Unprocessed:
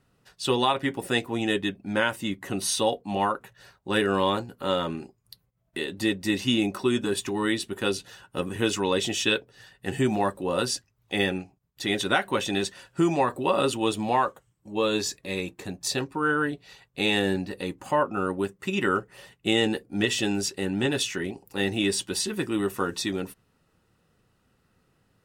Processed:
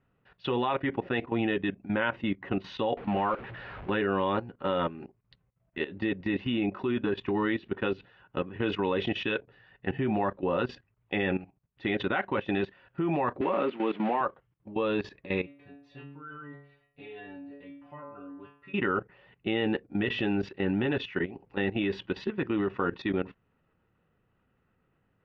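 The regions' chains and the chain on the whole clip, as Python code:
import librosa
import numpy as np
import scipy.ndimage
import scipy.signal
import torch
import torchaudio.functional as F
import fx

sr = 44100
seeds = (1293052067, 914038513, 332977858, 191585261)

y = fx.chain(x, sr, fx.zero_step(step_db=-32.0),
    fx.moving_average(points=4), at=(2.97, 3.9))
y = fx.chain(y, sr, fx.crossing_spikes(level_db=-16.0),
    fx.steep_highpass(hz=170.0, slope=36),
    fx.air_absorb(metres=330.0), at=(13.41, 14.21))
y = fx.low_shelf(y, sr, hz=110.0, db=10.0, at=(15.45, 18.73), fade=0.02)
y = fx.dmg_tone(y, sr, hz=11000.0, level_db=-28.0, at=(15.45, 18.73), fade=0.02)
y = fx.stiff_resonator(y, sr, f0_hz=140.0, decay_s=0.58, stiffness=0.002, at=(15.45, 18.73), fade=0.02)
y = fx.level_steps(y, sr, step_db=15)
y = scipy.signal.sosfilt(scipy.signal.cheby2(4, 60, 8400.0, 'lowpass', fs=sr, output='sos'), y)
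y = y * librosa.db_to_amplitude(3.0)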